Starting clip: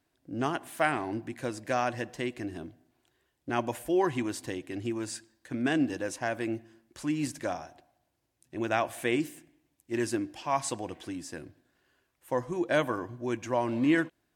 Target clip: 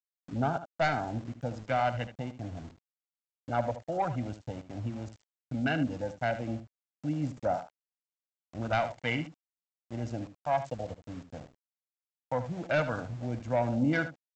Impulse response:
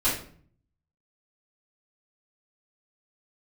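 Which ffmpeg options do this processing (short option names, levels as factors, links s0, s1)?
-filter_complex "[0:a]afwtdn=0.02,aecho=1:1:1.4:0.81,acrossover=split=190[s0][s1];[s1]asoftclip=type=tanh:threshold=0.0944[s2];[s0][s2]amix=inputs=2:normalize=0,aphaser=in_gain=1:out_gain=1:delay=1.8:decay=0.25:speed=0.14:type=triangular,aresample=16000,aeval=exprs='val(0)*gte(abs(val(0)),0.00473)':c=same,aresample=44100,aecho=1:1:75:0.251"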